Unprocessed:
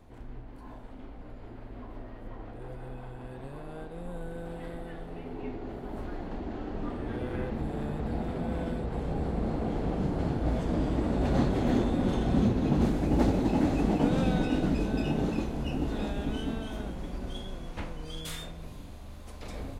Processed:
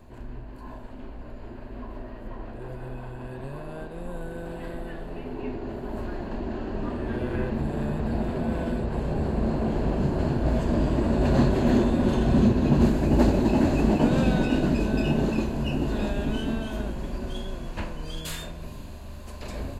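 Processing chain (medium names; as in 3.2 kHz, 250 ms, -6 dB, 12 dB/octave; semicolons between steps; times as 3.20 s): rippled EQ curve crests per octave 1.4, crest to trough 6 dB; trim +4.5 dB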